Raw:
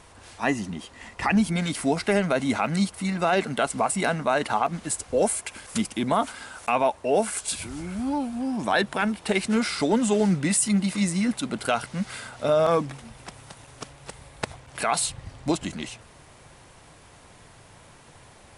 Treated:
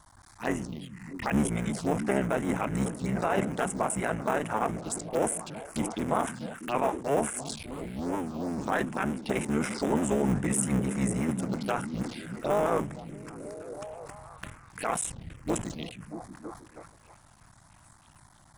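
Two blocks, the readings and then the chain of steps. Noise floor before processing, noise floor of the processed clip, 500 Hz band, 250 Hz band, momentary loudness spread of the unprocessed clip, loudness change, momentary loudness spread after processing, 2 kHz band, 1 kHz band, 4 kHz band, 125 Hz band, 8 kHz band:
-51 dBFS, -57 dBFS, -5.0 dB, -4.5 dB, 14 LU, -5.0 dB, 15 LU, -7.0 dB, -5.0 dB, -11.0 dB, -2.5 dB, -5.5 dB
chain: cycle switcher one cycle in 3, muted; vibrato 7.5 Hz 37 cents; touch-sensitive phaser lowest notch 400 Hz, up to 4.4 kHz, full sweep at -24 dBFS; on a send: repeats whose band climbs or falls 319 ms, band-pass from 150 Hz, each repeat 0.7 oct, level -5 dB; on the sum: decay stretcher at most 110 dB/s; trim -3.5 dB

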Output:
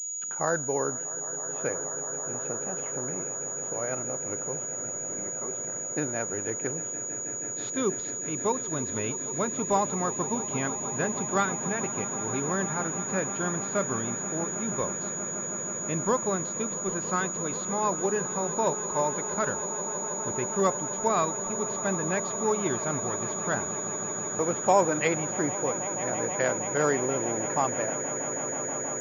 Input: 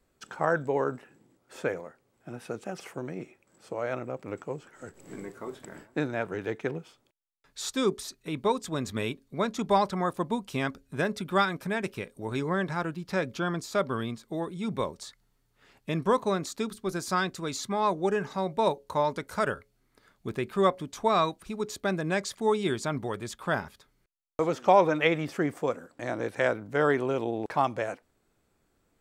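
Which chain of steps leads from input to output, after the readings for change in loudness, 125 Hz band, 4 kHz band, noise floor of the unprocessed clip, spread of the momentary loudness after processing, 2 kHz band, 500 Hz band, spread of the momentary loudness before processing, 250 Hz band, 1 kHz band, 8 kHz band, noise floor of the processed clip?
+1.5 dB, -0.5 dB, -7.0 dB, -72 dBFS, 5 LU, -1.0 dB, -0.5 dB, 15 LU, -0.5 dB, -0.5 dB, +19.0 dB, -34 dBFS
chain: echo with a slow build-up 160 ms, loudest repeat 8, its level -16.5 dB; class-D stage that switches slowly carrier 6.8 kHz; trim -1.5 dB

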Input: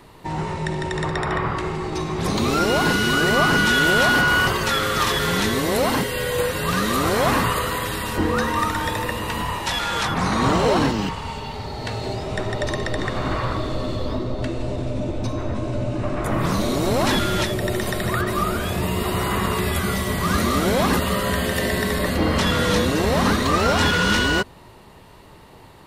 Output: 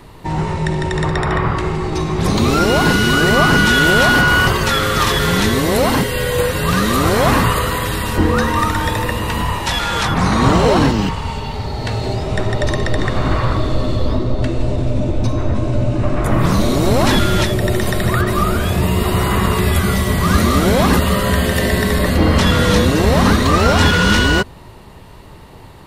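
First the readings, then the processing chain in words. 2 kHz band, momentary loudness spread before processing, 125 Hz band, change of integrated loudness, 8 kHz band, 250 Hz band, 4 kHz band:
+4.5 dB, 9 LU, +9.0 dB, +6.0 dB, +4.5 dB, +6.5 dB, +4.5 dB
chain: bass shelf 140 Hz +7.5 dB; trim +4.5 dB

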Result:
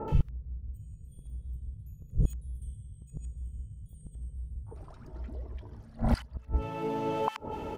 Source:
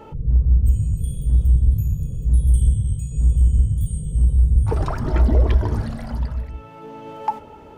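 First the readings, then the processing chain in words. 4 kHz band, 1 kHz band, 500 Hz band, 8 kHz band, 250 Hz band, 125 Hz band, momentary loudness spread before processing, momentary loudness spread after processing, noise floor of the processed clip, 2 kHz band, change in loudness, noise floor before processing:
no reading, -6.5 dB, -5.5 dB, -18.0 dB, -8.5 dB, -17.5 dB, 11 LU, 16 LU, -52 dBFS, -8.0 dB, -16.5 dB, -41 dBFS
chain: inverted gate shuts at -18 dBFS, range -30 dB; bands offset in time lows, highs 80 ms, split 1.4 kHz; trim +5.5 dB

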